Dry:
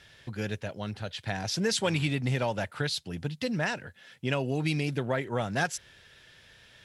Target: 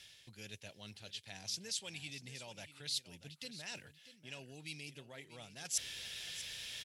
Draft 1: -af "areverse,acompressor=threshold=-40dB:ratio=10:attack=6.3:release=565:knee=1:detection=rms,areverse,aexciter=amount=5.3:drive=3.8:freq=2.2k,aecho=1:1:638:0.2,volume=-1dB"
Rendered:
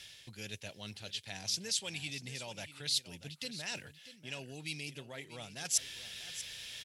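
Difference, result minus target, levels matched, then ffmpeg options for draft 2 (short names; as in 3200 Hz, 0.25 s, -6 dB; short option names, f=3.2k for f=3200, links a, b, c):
compressor: peak gain reduction -6 dB
-af "areverse,acompressor=threshold=-46.5dB:ratio=10:attack=6.3:release=565:knee=1:detection=rms,areverse,aexciter=amount=5.3:drive=3.8:freq=2.2k,aecho=1:1:638:0.2,volume=-1dB"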